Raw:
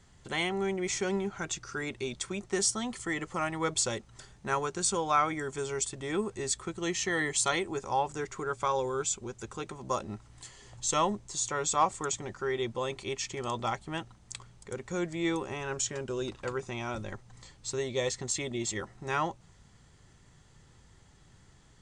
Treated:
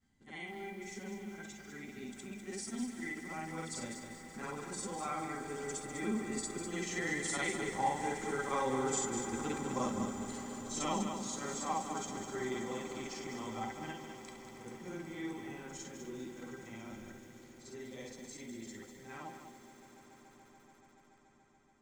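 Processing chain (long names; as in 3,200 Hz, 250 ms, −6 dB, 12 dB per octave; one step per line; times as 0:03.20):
every overlapping window played backwards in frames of 139 ms
source passing by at 0:09.06, 5 m/s, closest 6.4 metres
in parallel at −2 dB: speech leveller within 4 dB
on the sum: tuned comb filter 790 Hz, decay 0.19 s, harmonics all, mix 80%
hollow resonant body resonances 240/2,000 Hz, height 15 dB, ringing for 45 ms
on a send: echo that builds up and dies away 143 ms, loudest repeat 5, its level −17.5 dB
on the sum: feedback echo at a low word length 200 ms, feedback 35%, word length 11 bits, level −6.5 dB
level +6.5 dB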